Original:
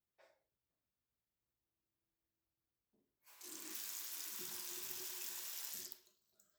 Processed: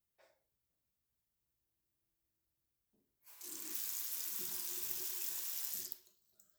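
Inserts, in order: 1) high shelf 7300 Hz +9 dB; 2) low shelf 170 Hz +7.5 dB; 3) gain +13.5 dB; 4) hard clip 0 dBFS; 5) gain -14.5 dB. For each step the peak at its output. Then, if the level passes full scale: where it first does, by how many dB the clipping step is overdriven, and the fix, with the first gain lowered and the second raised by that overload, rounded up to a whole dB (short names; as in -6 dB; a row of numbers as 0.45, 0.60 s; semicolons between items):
-17.0, -17.0, -3.5, -3.5, -18.0 dBFS; no overload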